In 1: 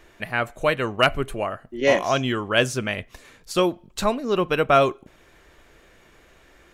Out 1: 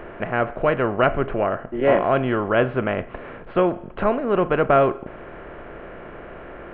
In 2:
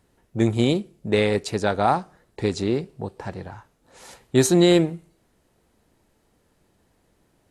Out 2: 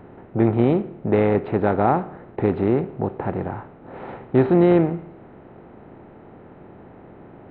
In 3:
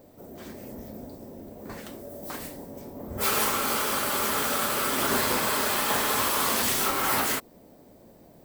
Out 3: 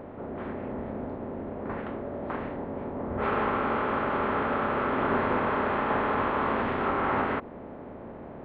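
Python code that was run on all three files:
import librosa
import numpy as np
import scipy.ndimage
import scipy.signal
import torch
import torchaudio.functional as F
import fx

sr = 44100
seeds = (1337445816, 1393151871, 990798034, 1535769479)

y = fx.bin_compress(x, sr, power=0.6)
y = scipy.ndimage.gaussian_filter1d(y, 4.4, mode='constant')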